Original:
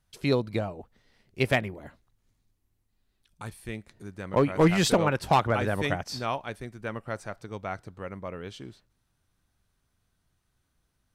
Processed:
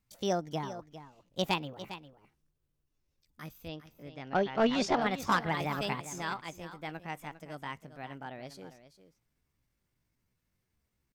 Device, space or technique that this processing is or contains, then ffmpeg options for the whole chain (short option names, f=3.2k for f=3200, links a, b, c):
chipmunk voice: -filter_complex "[0:a]asetrate=62367,aresample=44100,atempo=0.707107,asettb=1/sr,asplit=3[a][b][c];[a]atrim=end=3.684[d];[b]atrim=start=3.68:end=5.02,asetpts=PTS-STARTPTS,afade=t=in:d=0.004:c=qsin,afade=t=out:st=1.336:d=0.004:c=qsin,lowpass=f=5.9k:w=0.5412,lowpass=f=5.9k:w=1.3066[e];[c]atrim=start=5.016[f];[d][e]acrossfade=d=0.004:c1=hsin:c2=qsin[g];[g][f]acrossfade=d=0.004:c1=qsin:c2=hsin,aecho=1:1:403:0.224,volume=-6dB"